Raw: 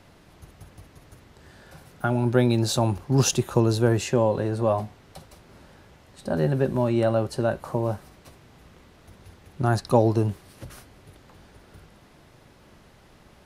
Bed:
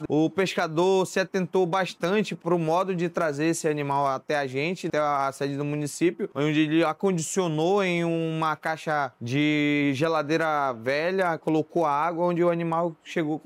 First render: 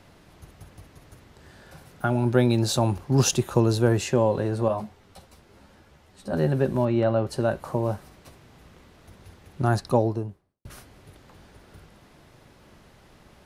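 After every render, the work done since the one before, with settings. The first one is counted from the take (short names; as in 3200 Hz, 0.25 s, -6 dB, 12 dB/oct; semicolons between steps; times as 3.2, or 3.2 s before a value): 4.68–6.33 ensemble effect; 6.85–7.27 air absorption 140 m; 9.66–10.65 studio fade out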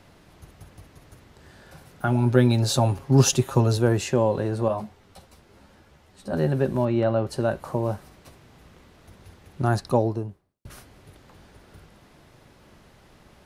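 2.07–3.77 comb 7.4 ms, depth 57%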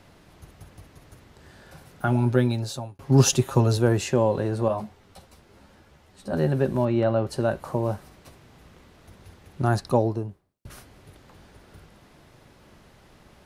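2.15–2.99 fade out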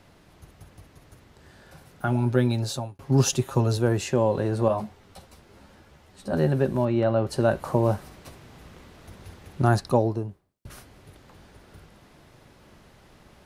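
vocal rider within 4 dB 0.5 s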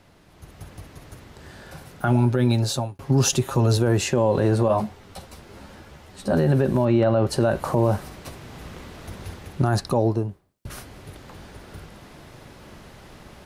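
AGC gain up to 8.5 dB; limiter -10.5 dBFS, peak gain reduction 8.5 dB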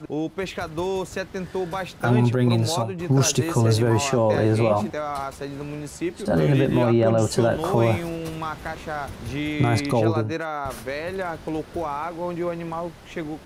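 add bed -4.5 dB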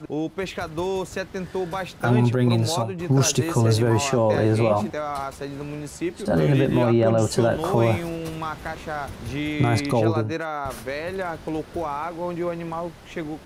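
nothing audible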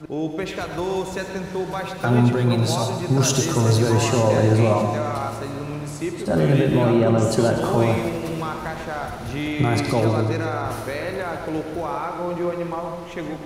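on a send: multi-head echo 82 ms, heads all three, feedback 73%, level -19 dB; on the sum: non-linear reverb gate 0.16 s rising, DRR 5.5 dB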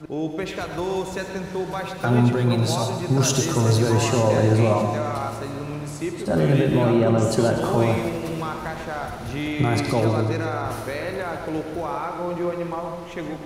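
gain -1 dB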